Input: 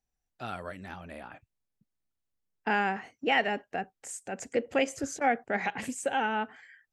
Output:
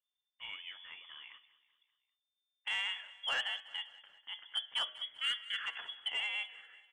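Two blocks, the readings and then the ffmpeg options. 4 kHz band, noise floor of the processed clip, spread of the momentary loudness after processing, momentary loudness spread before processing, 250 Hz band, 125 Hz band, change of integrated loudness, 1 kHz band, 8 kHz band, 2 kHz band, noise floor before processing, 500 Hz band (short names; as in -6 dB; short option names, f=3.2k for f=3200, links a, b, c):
+6.5 dB, under -85 dBFS, 14 LU, 16 LU, under -35 dB, under -30 dB, -6.0 dB, -18.5 dB, -16.0 dB, -6.5 dB, -84 dBFS, -26.5 dB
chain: -filter_complex "[0:a]bandreject=f=129.7:t=h:w=4,bandreject=f=259.4:t=h:w=4,bandreject=f=389.1:t=h:w=4,bandreject=f=518.8:t=h:w=4,bandreject=f=648.5:t=h:w=4,bandreject=f=778.2:t=h:w=4,bandreject=f=907.9:t=h:w=4,bandreject=f=1.0376k:t=h:w=4,bandreject=f=1.1673k:t=h:w=4,bandreject=f=1.297k:t=h:w=4,bandreject=f=1.4267k:t=h:w=4,bandreject=f=1.5564k:t=h:w=4,bandreject=f=1.6861k:t=h:w=4,bandreject=f=1.8158k:t=h:w=4,bandreject=f=1.9455k:t=h:w=4,bandreject=f=2.0752k:t=h:w=4,bandreject=f=2.2049k:t=h:w=4,bandreject=f=2.3346k:t=h:w=4,bandreject=f=2.4643k:t=h:w=4,bandreject=f=2.594k:t=h:w=4,bandreject=f=2.7237k:t=h:w=4,bandreject=f=2.8534k:t=h:w=4,bandreject=f=2.9831k:t=h:w=4,bandreject=f=3.1128k:t=h:w=4,bandreject=f=3.2425k:t=h:w=4,bandreject=f=3.3722k:t=h:w=4,bandreject=f=3.5019k:t=h:w=4,bandreject=f=3.6316k:t=h:w=4,bandreject=f=3.7613k:t=h:w=4,bandreject=f=3.891k:t=h:w=4,bandreject=f=4.0207k:t=h:w=4,bandreject=f=4.1504k:t=h:w=4,bandreject=f=4.2801k:t=h:w=4,bandreject=f=4.4098k:t=h:w=4,bandreject=f=4.5395k:t=h:w=4,bandreject=f=4.6692k:t=h:w=4,bandreject=f=4.7989k:t=h:w=4,bandreject=f=4.9286k:t=h:w=4,acrossover=split=190[a][b];[a]acompressor=threshold=-57dB:ratio=6[c];[c][b]amix=inputs=2:normalize=0,lowpass=f=3.1k:t=q:w=0.5098,lowpass=f=3.1k:t=q:w=0.6013,lowpass=f=3.1k:t=q:w=0.9,lowpass=f=3.1k:t=q:w=2.563,afreqshift=-3600,asoftclip=type=tanh:threshold=-19.5dB,aecho=1:1:194|388|582|776:0.126|0.0655|0.034|0.0177,volume=-7dB"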